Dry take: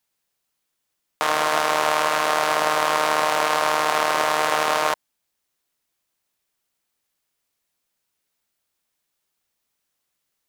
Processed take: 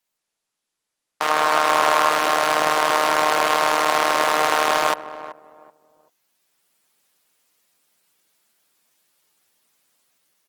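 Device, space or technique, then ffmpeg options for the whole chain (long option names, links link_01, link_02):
video call: -filter_complex "[0:a]asplit=3[link_01][link_02][link_03];[link_01]afade=type=out:start_time=1.29:duration=0.02[link_04];[link_02]equalizer=frequency=1100:width=1.5:gain=3.5,afade=type=in:start_time=1.29:duration=0.02,afade=type=out:start_time=2.1:duration=0.02[link_05];[link_03]afade=type=in:start_time=2.1:duration=0.02[link_06];[link_04][link_05][link_06]amix=inputs=3:normalize=0,highpass=150,asplit=2[link_07][link_08];[link_08]adelay=381,lowpass=frequency=850:poles=1,volume=-12dB,asplit=2[link_09][link_10];[link_10]adelay=381,lowpass=frequency=850:poles=1,volume=0.28,asplit=2[link_11][link_12];[link_12]adelay=381,lowpass=frequency=850:poles=1,volume=0.28[link_13];[link_07][link_09][link_11][link_13]amix=inputs=4:normalize=0,dynaudnorm=framelen=240:gausssize=11:maxgain=11.5dB,volume=-1dB" -ar 48000 -c:a libopus -b:a 16k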